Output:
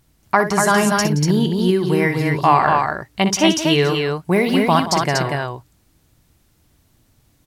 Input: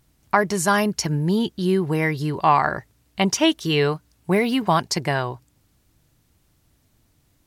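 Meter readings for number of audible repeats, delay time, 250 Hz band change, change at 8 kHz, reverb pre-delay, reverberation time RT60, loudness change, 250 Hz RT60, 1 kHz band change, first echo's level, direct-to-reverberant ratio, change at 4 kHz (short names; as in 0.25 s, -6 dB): 3, 61 ms, +4.5 dB, +4.5 dB, none, none, +4.0 dB, none, +4.5 dB, -10.0 dB, none, +4.5 dB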